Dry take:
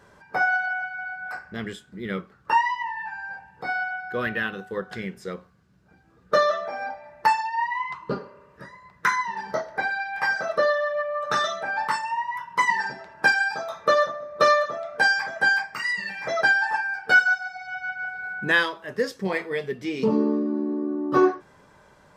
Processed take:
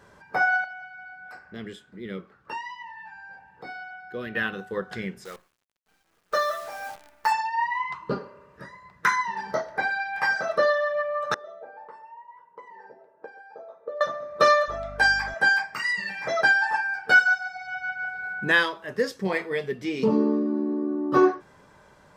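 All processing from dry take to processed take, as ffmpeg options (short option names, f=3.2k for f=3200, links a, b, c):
-filter_complex "[0:a]asettb=1/sr,asplit=3[a][b][c];[a]atrim=end=0.644[d];[b]atrim=start=0.64:end=4.35,asetpts=PTS-STARTPTS,afade=t=in:d=0.004:c=qsin,afade=t=out:st=3.706:d=0.004:c=qsin,bass=f=250:g=-7,treble=f=4k:g=-8,acrossover=split=460|3000[e][f][g];[f]acompressor=threshold=-52dB:ratio=2:attack=3.2:release=140:knee=2.83:detection=peak[h];[e][h][g]amix=inputs=3:normalize=0[i];[c]atrim=start=4.346[j];[d][i]acrossfade=d=0.004:c1=hsin:c2=qsin[k];[k][j]acrossfade=d=0.004:c1=qsin:c2=hsin,asettb=1/sr,asplit=3[l][m][n];[l]atrim=end=5.254[o];[m]atrim=start=5.25:end=7.32,asetpts=PTS-STARTPTS,afade=t=in:d=0.004:c=qsin,afade=t=out:st=2.066:d=0.004:c=qsin,highpass=f=1.1k:p=1,equalizer=f=2.9k:t=o:w=1.1:g=-5,acrusher=bits=8:dc=4:mix=0:aa=0.000001[p];[n]atrim=start=7.316[q];[o][p]acrossfade=d=0.004:c1=hsin:c2=qsin[r];[r][q]acrossfade=d=0.004:c1=qsin:c2=hsin,asettb=1/sr,asplit=3[s][t][u];[s]atrim=end=11.344[v];[t]atrim=start=11.34:end=14.01,asetpts=PTS-STARTPTS,afade=t=in:d=0.004:c=qsin,afade=t=out:st=2.666:d=0.004:c=qsin,acompressor=threshold=-23dB:ratio=4:attack=3.2:release=140:knee=1:detection=peak,bandpass=f=480:t=q:w=4.8,aecho=1:1:131:0.133,atrim=end_sample=117747[w];[u]atrim=start=14.006[x];[v][w]acrossfade=d=0.004:c1=hsin:c2=qsin[y];[y][x]acrossfade=d=0.004:c1=qsin:c2=hsin,asettb=1/sr,asplit=3[z][aa][ab];[z]atrim=end=14.684[ac];[aa]atrim=start=14.68:end=15.34,asetpts=PTS-STARTPTS,afade=t=in:d=0.004:c=qsin,afade=t=out:st=0.656:d=0.004:c=qsin,lowshelf=f=200:g=-10,bandreject=f=500:w=10,aeval=exprs='val(0)+0.01*(sin(2*PI*50*n/s)+sin(2*PI*2*50*n/s)/2+sin(2*PI*3*50*n/s)/3+sin(2*PI*4*50*n/s)/4+sin(2*PI*5*50*n/s)/5)':c=same[ad];[ab]atrim=start=15.336[ae];[ac][ad]acrossfade=d=0.004:c1=hsin:c2=qsin[af];[af][ae]acrossfade=d=0.004:c1=qsin:c2=hsin"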